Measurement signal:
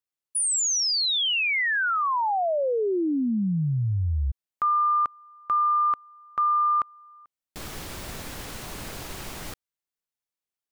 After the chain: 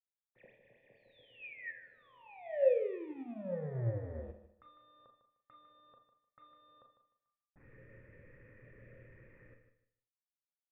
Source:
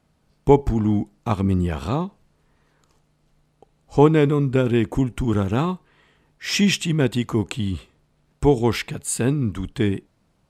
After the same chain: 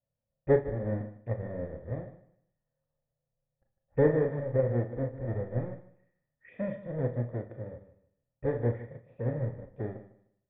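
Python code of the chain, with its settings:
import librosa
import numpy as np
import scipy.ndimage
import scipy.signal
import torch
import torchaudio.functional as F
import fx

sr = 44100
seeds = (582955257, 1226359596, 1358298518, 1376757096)

p1 = fx.halfwave_hold(x, sr)
p2 = fx.peak_eq(p1, sr, hz=120.0, db=12.5, octaves=0.38)
p3 = fx.env_phaser(p2, sr, low_hz=360.0, high_hz=2600.0, full_db=-17.5)
p4 = fx.formant_cascade(p3, sr, vowel='e')
p5 = fx.air_absorb(p4, sr, metres=260.0)
p6 = p5 + fx.echo_feedback(p5, sr, ms=152, feedback_pct=24, wet_db=-10.0, dry=0)
p7 = fx.rev_schroeder(p6, sr, rt60_s=0.34, comb_ms=26, drr_db=4.0)
y = fx.upward_expand(p7, sr, threshold_db=-43.0, expansion=1.5)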